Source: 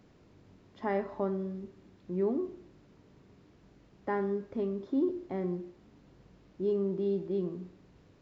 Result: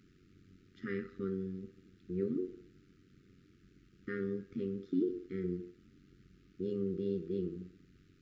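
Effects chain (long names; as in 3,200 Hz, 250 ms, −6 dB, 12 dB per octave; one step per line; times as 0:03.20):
linear-phase brick-wall band-stop 410–1,200 Hz
amplitude modulation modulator 92 Hz, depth 50%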